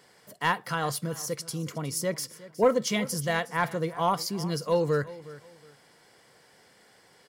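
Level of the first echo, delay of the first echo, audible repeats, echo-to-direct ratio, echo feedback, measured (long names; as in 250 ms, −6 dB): −18.0 dB, 364 ms, 2, −17.5 dB, 27%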